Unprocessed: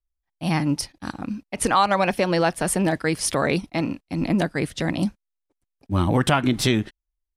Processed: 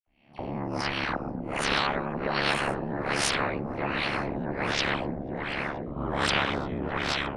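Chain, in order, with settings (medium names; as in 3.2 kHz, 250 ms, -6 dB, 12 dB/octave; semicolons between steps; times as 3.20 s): reverse spectral sustain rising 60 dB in 0.43 s; gate with hold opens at -33 dBFS; reverse; upward compressor, threshold -28 dBFS; reverse; phase dispersion lows, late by 68 ms, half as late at 2.4 kHz; ring modulator 35 Hz; on a send: echo whose repeats swap between lows and highs 242 ms, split 1.8 kHz, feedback 73%, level -10 dB; on the sum: LFO low-pass sine 1.3 Hz 230–2500 Hz; spectrum-flattening compressor 4:1; trim -8 dB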